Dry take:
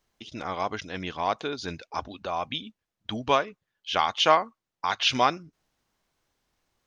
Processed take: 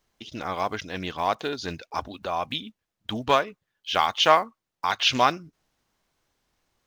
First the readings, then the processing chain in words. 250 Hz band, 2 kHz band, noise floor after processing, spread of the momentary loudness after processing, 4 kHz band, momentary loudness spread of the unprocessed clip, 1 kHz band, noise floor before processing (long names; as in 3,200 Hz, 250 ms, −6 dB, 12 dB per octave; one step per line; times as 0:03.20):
+1.5 dB, +2.5 dB, −85 dBFS, 16 LU, +2.0 dB, 16 LU, +2.0 dB, below −85 dBFS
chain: one scale factor per block 7 bits
highs frequency-modulated by the lows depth 0.17 ms
level +2 dB